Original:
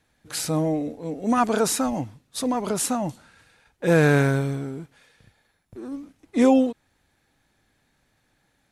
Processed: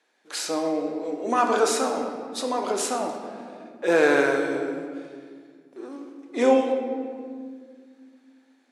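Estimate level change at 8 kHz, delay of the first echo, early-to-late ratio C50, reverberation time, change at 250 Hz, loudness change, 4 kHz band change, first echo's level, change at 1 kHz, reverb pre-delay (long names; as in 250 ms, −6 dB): −2.5 dB, no echo audible, 5.0 dB, 2.0 s, −4.5 dB, −1.0 dB, +1.0 dB, no echo audible, +2.0 dB, 17 ms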